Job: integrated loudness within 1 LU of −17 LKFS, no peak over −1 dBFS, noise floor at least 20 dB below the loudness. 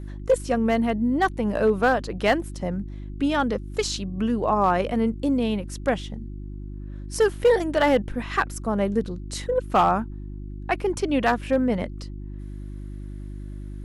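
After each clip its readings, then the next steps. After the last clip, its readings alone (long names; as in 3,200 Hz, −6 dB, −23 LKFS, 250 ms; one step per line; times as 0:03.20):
share of clipped samples 0.3%; peaks flattened at −11.5 dBFS; mains hum 50 Hz; hum harmonics up to 350 Hz; level of the hum −32 dBFS; integrated loudness −24.0 LKFS; sample peak −11.5 dBFS; target loudness −17.0 LKFS
→ clipped peaks rebuilt −11.5 dBFS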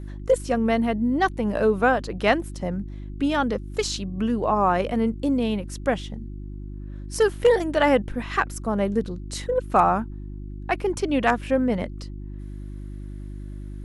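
share of clipped samples 0.0%; mains hum 50 Hz; hum harmonics up to 350 Hz; level of the hum −32 dBFS
→ hum removal 50 Hz, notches 7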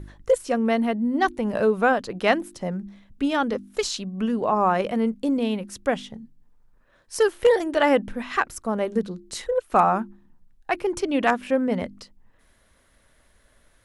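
mains hum none found; integrated loudness −24.0 LKFS; sample peak −4.5 dBFS; target loudness −17.0 LKFS
→ level +7 dB
brickwall limiter −1 dBFS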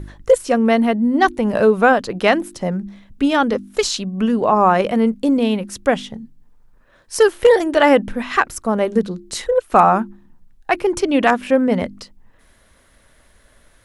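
integrated loudness −17.0 LKFS; sample peak −1.0 dBFS; background noise floor −54 dBFS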